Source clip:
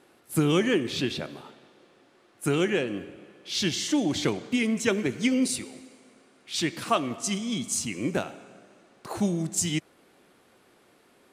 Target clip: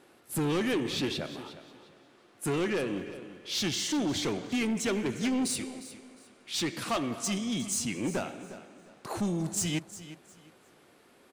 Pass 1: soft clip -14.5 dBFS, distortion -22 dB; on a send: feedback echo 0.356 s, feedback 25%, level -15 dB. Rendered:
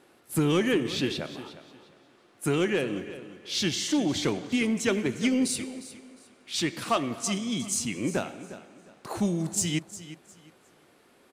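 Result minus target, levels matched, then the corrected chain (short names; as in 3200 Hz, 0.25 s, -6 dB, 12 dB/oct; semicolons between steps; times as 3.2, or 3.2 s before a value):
soft clip: distortion -12 dB
soft clip -25 dBFS, distortion -10 dB; on a send: feedback echo 0.356 s, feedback 25%, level -15 dB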